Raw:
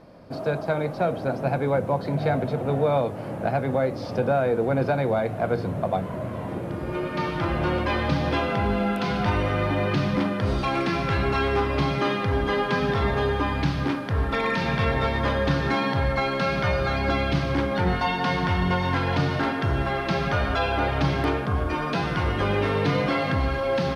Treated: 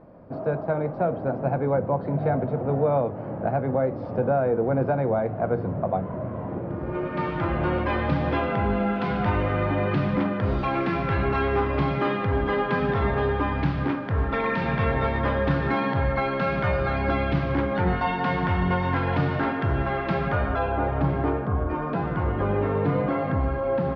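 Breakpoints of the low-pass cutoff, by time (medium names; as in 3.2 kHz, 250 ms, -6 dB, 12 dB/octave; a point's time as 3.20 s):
6.69 s 1.3 kHz
7.28 s 2.3 kHz
20.09 s 2.3 kHz
20.80 s 1.2 kHz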